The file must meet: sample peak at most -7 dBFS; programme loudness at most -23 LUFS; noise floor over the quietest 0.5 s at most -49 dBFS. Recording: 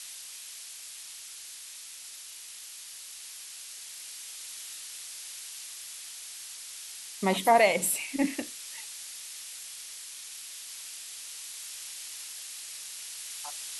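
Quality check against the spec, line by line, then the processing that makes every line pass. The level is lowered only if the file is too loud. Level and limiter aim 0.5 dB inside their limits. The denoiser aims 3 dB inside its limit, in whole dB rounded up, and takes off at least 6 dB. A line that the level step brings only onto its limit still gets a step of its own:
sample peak -10.5 dBFS: pass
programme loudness -34.0 LUFS: pass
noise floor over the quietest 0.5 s -45 dBFS: fail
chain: noise reduction 7 dB, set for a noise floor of -45 dBFS

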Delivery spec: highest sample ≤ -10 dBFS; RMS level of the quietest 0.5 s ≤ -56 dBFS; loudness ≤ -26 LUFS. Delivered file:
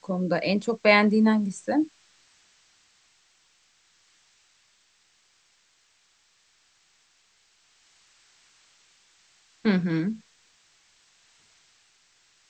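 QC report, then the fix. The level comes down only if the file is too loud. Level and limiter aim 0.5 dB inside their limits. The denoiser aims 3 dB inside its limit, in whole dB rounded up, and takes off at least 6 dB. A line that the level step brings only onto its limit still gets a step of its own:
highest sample -5.0 dBFS: fail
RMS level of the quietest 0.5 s -65 dBFS: pass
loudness -23.5 LUFS: fail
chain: trim -3 dB; peak limiter -10.5 dBFS

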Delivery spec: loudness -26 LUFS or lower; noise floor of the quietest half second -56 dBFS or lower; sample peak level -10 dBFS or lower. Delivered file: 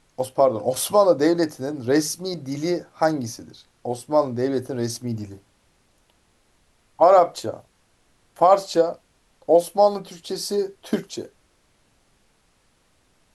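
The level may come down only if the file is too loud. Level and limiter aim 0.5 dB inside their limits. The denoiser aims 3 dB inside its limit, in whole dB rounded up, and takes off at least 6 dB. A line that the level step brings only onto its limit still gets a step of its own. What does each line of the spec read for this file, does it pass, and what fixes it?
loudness -21.5 LUFS: fail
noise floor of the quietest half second -63 dBFS: pass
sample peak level -4.5 dBFS: fail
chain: trim -5 dB; peak limiter -10.5 dBFS

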